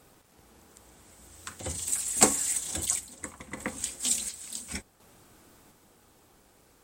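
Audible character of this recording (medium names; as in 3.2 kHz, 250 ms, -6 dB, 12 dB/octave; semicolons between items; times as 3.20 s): a quantiser's noise floor 10-bit, dither none; random-step tremolo 1.4 Hz; MP3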